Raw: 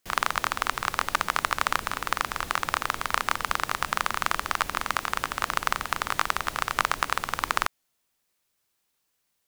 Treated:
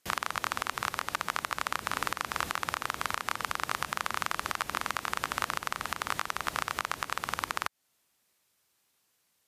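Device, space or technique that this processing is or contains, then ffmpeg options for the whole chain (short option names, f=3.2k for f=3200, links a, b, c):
podcast mastering chain: -af "highpass=66,acompressor=threshold=-26dB:ratio=3,alimiter=limit=-12.5dB:level=0:latency=1:release=383,volume=4dB" -ar 32000 -c:a libmp3lame -b:a 112k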